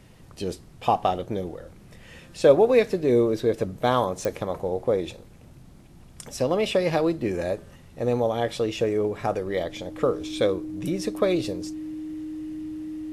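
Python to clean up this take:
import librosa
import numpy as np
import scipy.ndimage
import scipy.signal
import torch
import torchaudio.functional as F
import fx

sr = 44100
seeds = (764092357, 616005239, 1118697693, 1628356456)

y = fx.fix_declick_ar(x, sr, threshold=10.0)
y = fx.notch(y, sr, hz=310.0, q=30.0)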